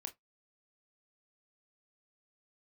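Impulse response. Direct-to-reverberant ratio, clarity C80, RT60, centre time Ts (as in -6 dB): 5.5 dB, 32.5 dB, 0.15 s, 7 ms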